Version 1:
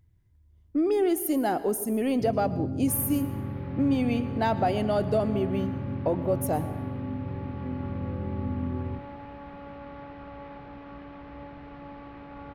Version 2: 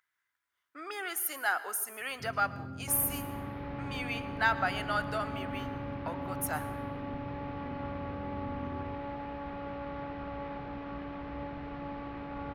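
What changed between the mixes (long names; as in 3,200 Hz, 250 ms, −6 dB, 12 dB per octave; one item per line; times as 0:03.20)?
speech: add high-pass with resonance 1,400 Hz, resonance Q 3.5
first sound −10.5 dB
second sound +3.0 dB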